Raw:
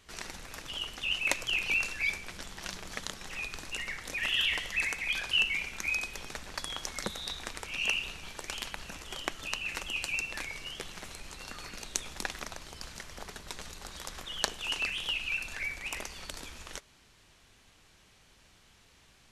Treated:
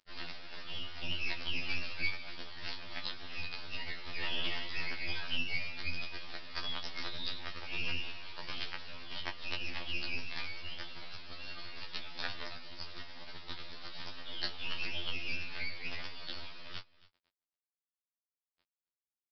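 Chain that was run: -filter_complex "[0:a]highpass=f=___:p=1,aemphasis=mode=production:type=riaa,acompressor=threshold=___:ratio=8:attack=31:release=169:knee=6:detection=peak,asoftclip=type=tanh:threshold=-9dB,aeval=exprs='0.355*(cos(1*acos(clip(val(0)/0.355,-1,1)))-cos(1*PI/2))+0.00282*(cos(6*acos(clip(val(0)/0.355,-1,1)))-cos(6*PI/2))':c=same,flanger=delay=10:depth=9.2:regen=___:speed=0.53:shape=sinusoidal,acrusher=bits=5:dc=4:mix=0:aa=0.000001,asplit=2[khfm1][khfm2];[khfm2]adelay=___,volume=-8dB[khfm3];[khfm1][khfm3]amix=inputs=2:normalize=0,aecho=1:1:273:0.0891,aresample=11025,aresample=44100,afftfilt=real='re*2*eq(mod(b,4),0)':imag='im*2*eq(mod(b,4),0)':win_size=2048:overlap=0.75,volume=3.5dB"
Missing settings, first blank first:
54, -28dB, 47, 20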